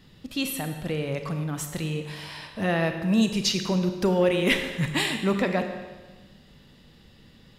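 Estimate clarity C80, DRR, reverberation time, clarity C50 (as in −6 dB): 8.5 dB, 6.0 dB, 1.3 s, 7.0 dB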